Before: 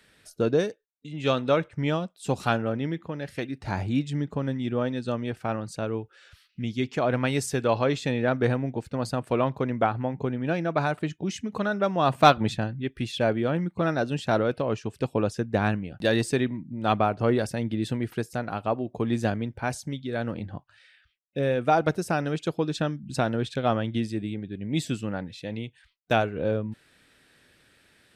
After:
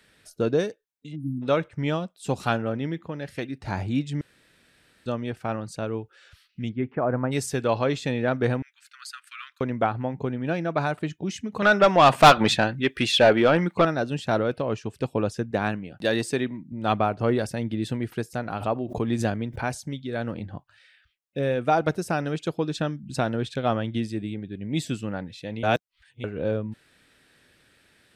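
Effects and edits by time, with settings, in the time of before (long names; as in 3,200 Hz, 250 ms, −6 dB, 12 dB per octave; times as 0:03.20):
0:01.16–0:01.42: time-frequency box erased 350–8,900 Hz
0:04.21–0:05.06: fill with room tone
0:06.68–0:07.31: low-pass filter 2,100 Hz → 1,300 Hz 24 dB per octave
0:08.62–0:09.61: Butterworth high-pass 1,300 Hz 72 dB per octave
0:11.62–0:13.85: mid-hump overdrive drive 20 dB, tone 6,100 Hz, clips at −4.5 dBFS
0:15.51–0:16.72: high-pass filter 170 Hz 6 dB per octave
0:18.36–0:19.82: background raised ahead of every attack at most 110 dB per second
0:25.63–0:26.24: reverse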